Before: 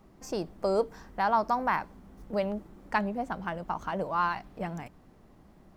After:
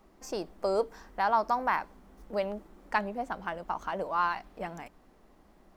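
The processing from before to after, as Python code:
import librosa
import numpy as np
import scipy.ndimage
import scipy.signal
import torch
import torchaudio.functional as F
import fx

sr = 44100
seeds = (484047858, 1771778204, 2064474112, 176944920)

y = fx.peak_eq(x, sr, hz=120.0, db=-13.0, octaves=1.5)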